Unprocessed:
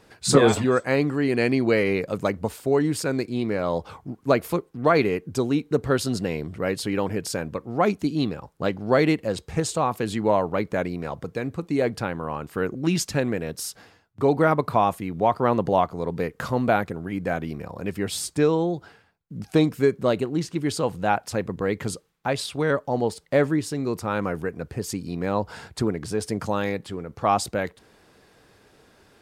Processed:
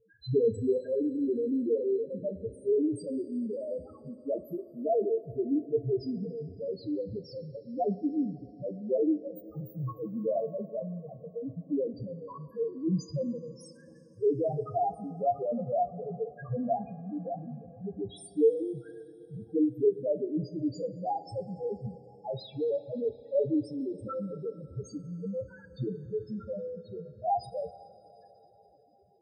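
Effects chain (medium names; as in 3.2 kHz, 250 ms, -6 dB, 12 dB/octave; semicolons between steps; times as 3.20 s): 9.26–9.88 s: formants flattened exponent 0.1; band-stop 2 kHz, Q 12; loudest bins only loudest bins 1; two-slope reverb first 0.21 s, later 4.5 s, from -21 dB, DRR 6.5 dB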